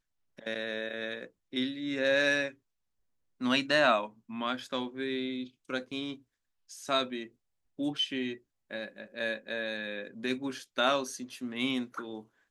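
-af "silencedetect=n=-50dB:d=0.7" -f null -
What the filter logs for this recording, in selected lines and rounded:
silence_start: 2.54
silence_end: 3.40 | silence_duration: 0.87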